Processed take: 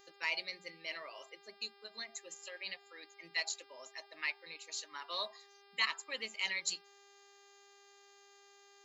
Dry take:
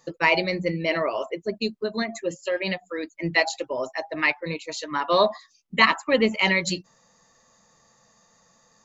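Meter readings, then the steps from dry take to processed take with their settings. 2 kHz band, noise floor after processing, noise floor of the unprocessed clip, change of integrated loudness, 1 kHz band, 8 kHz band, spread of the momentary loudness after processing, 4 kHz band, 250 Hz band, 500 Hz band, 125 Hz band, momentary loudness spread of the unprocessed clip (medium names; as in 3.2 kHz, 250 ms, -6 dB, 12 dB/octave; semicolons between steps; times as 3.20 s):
-15.0 dB, -63 dBFS, -62 dBFS, -15.5 dB, -21.0 dB, no reading, 15 LU, -10.5 dB, -33.0 dB, -26.5 dB, under -35 dB, 11 LU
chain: differentiator; mains buzz 400 Hz, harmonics 13, -59 dBFS -3 dB/octave; trim -4.5 dB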